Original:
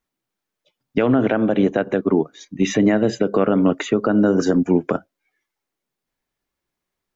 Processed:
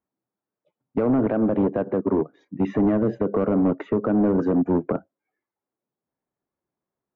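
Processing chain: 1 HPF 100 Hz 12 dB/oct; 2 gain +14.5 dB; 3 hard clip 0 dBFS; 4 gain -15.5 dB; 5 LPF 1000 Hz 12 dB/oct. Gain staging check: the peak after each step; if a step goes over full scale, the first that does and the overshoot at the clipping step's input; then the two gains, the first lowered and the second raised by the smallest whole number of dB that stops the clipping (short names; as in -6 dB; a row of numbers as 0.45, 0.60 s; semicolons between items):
-5.5, +9.0, 0.0, -15.5, -15.0 dBFS; step 2, 9.0 dB; step 2 +5.5 dB, step 4 -6.5 dB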